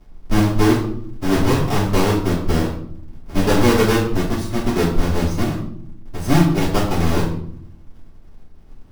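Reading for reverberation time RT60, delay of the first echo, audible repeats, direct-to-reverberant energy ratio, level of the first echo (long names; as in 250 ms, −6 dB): 0.65 s, no echo audible, no echo audible, −10.5 dB, no echo audible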